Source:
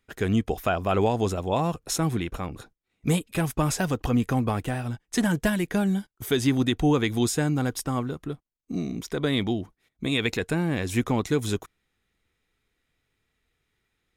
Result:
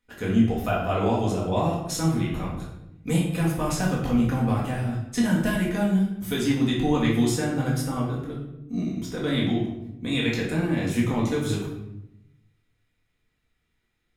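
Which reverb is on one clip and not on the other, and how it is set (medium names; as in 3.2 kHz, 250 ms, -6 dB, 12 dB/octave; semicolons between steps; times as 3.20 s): simulated room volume 270 m³, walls mixed, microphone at 1.9 m; trim -6.5 dB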